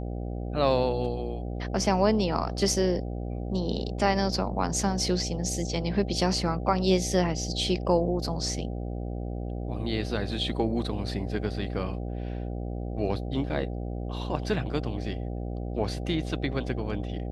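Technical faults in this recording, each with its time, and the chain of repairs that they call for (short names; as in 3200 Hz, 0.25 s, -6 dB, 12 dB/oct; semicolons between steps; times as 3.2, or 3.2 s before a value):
buzz 60 Hz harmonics 13 -33 dBFS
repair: de-hum 60 Hz, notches 13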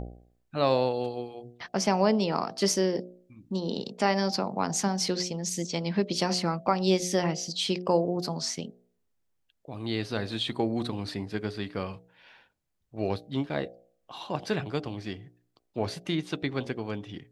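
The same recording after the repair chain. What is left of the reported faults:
none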